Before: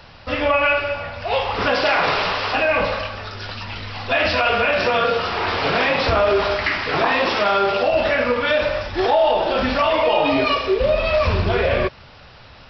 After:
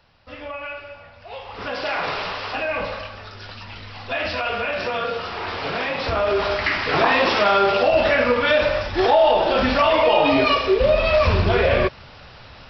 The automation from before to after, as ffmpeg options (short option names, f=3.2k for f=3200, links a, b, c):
-af "volume=1dB,afade=t=in:st=1.42:d=0.55:silence=0.375837,afade=t=in:st=5.98:d=1:silence=0.421697"